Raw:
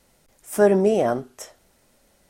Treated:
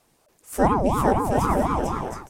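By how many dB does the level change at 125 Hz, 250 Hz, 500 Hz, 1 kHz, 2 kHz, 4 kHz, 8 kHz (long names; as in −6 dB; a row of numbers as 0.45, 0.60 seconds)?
+6.0, +1.5, −4.0, +9.0, +0.5, +0.5, +0.5 decibels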